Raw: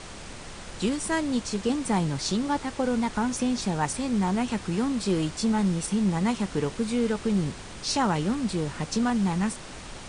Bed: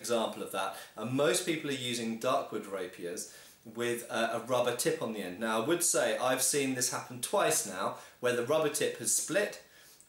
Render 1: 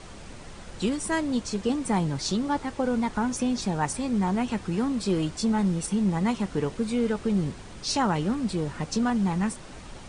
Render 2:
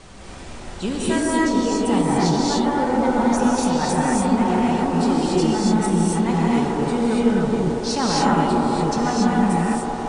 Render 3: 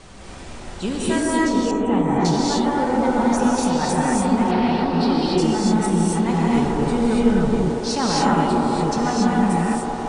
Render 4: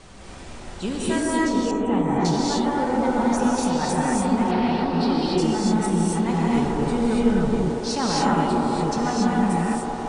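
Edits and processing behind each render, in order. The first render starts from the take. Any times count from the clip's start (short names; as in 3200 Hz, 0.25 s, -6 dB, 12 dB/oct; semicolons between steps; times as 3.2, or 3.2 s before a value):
denoiser 6 dB, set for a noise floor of -41 dBFS
on a send: band-limited delay 0.167 s, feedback 85%, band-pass 640 Hz, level -4 dB; on the sum: non-linear reverb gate 0.31 s rising, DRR -5 dB
1.71–2.25 running mean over 9 samples; 4.51–5.38 resonant high shelf 5700 Hz -9 dB, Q 3; 6.54–7.66 low shelf 80 Hz +11 dB
gain -2.5 dB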